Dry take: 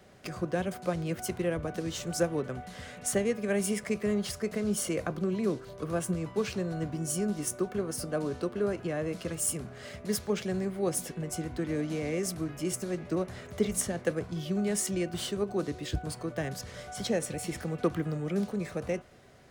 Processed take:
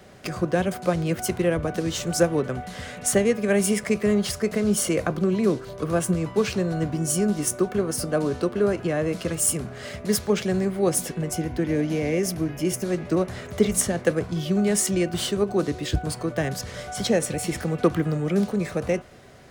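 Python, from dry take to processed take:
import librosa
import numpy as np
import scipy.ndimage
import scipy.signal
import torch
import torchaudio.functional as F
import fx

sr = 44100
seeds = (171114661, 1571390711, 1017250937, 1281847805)

y = fx.graphic_eq_31(x, sr, hz=(1250, 4000, 8000), db=(-7, -5, -8), at=(11.33, 12.85))
y = F.gain(torch.from_numpy(y), 8.0).numpy()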